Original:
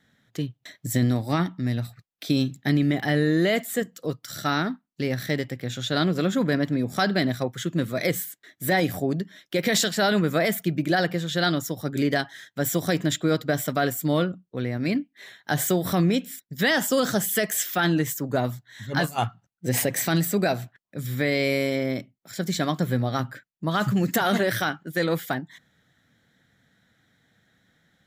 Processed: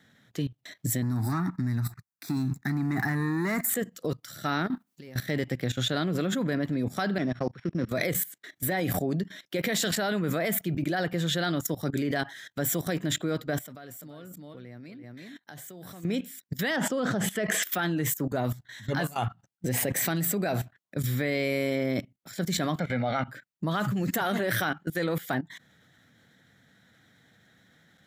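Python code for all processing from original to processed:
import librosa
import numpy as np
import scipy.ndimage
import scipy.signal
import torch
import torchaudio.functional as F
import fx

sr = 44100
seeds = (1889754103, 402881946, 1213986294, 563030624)

y = fx.chain(x, sr, fx.leveller(passes=2),
    fx.fixed_phaser(hz=1300.0, stages=4), at=(1.02, 3.7))
y = fx.chain(y, sr, fx.over_compress(threshold_db=-32.0, ratio=-0.5),
    fx.high_shelf(hz=8700.0, db=7.0), at=(4.66, 5.19))
y = fx.chain(y, sr, fx.sample_sort(block=8),
    fx.level_steps(step_db=15),
    fx.bandpass_edges(low_hz=100.0, high_hz=2400.0), at=(7.18, 7.89))
y = fx.chain(y, sr, fx.level_steps(step_db=18),
    fx.echo_single(ms=341, db=-11.0), at=(13.59, 16.05))
y = fx.chain(y, sr, fx.spacing_loss(db_at_10k=20),
    fx.env_flatten(amount_pct=50), at=(16.76, 17.63))
y = fx.chain(y, sr, fx.bandpass_edges(low_hz=210.0, high_hz=3800.0),
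    fx.peak_eq(hz=2200.0, db=13.5, octaves=0.34),
    fx.comb(ms=1.4, depth=0.61), at=(22.79, 23.28))
y = scipy.signal.sosfilt(scipy.signal.butter(2, 73.0, 'highpass', fs=sr, output='sos'), y)
y = fx.dynamic_eq(y, sr, hz=5200.0, q=1.3, threshold_db=-43.0, ratio=4.0, max_db=-5)
y = fx.level_steps(y, sr, step_db=17)
y = y * librosa.db_to_amplitude(6.5)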